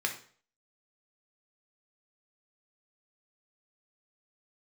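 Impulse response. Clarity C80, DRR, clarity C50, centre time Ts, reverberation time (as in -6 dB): 14.0 dB, 2.0 dB, 9.0 dB, 15 ms, 0.45 s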